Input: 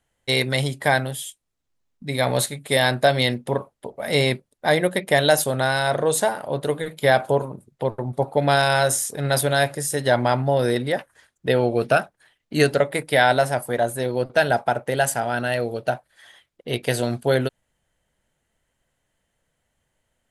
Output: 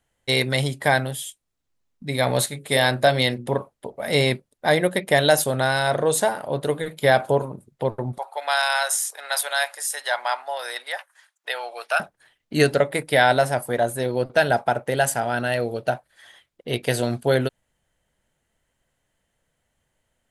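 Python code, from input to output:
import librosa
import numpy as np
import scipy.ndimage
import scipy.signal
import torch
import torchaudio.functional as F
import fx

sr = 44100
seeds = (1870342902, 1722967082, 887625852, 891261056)

y = fx.hum_notches(x, sr, base_hz=60, count=9, at=(2.46, 3.47))
y = fx.highpass(y, sr, hz=790.0, slope=24, at=(8.18, 12.0))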